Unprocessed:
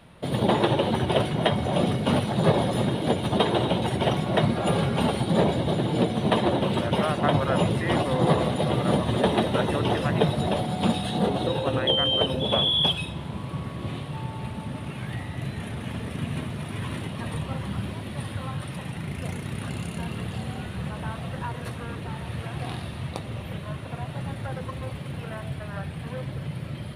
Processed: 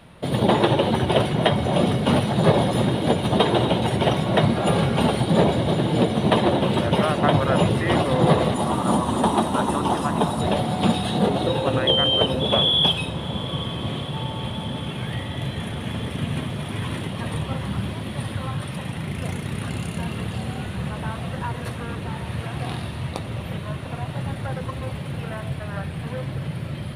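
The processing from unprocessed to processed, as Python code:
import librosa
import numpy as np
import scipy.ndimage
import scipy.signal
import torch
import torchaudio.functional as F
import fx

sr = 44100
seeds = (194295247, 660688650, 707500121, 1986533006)

y = fx.graphic_eq(x, sr, hz=(125, 250, 500, 1000, 2000, 4000, 8000), db=(-10, 5, -10, 10, -11, -4, 8), at=(8.54, 10.41))
y = fx.echo_diffused(y, sr, ms=792, feedback_pct=75, wet_db=-16)
y = F.gain(torch.from_numpy(y), 3.5).numpy()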